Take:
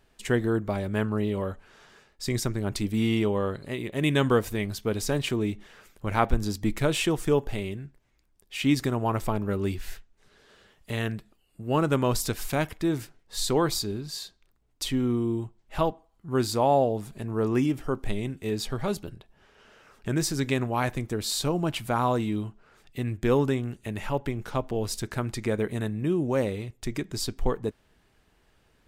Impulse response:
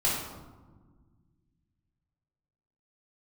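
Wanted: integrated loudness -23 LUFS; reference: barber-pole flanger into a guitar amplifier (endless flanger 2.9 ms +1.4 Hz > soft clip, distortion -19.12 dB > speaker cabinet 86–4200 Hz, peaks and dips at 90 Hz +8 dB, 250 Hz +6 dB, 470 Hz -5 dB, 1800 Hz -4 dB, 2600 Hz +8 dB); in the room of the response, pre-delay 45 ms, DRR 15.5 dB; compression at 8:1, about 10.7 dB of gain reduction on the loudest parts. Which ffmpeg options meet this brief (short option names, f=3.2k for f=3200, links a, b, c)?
-filter_complex "[0:a]acompressor=threshold=-27dB:ratio=8,asplit=2[a][b];[1:a]atrim=start_sample=2205,adelay=45[c];[b][c]afir=irnorm=-1:irlink=0,volume=-25.5dB[d];[a][d]amix=inputs=2:normalize=0,asplit=2[e][f];[f]adelay=2.9,afreqshift=1.4[g];[e][g]amix=inputs=2:normalize=1,asoftclip=threshold=-26dB,highpass=86,equalizer=f=90:t=q:w=4:g=8,equalizer=f=250:t=q:w=4:g=6,equalizer=f=470:t=q:w=4:g=-5,equalizer=f=1.8k:t=q:w=4:g=-4,equalizer=f=2.6k:t=q:w=4:g=8,lowpass=f=4.2k:w=0.5412,lowpass=f=4.2k:w=1.3066,volume=13.5dB"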